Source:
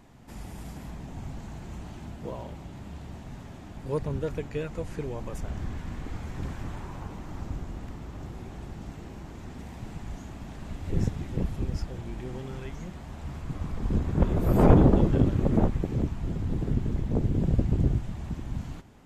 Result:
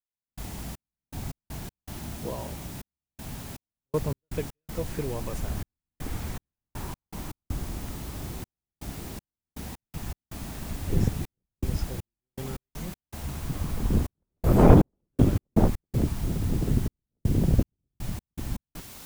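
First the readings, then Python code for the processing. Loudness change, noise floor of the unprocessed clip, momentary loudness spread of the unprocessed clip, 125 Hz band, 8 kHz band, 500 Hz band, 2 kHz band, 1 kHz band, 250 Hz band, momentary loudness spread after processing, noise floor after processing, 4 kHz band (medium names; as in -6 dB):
0.0 dB, -43 dBFS, 18 LU, 0.0 dB, no reading, +0.5 dB, +1.5 dB, +1.5 dB, +0.5 dB, 17 LU, under -85 dBFS, +5.5 dB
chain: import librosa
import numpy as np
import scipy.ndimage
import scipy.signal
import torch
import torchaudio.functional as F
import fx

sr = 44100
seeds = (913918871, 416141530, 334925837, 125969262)

y = fx.quant_dither(x, sr, seeds[0], bits=8, dither='triangular')
y = fx.step_gate(y, sr, bpm=80, pattern='..xx..x.x.xxxxx', floor_db=-60.0, edge_ms=4.5)
y = y * librosa.db_to_amplitude(2.5)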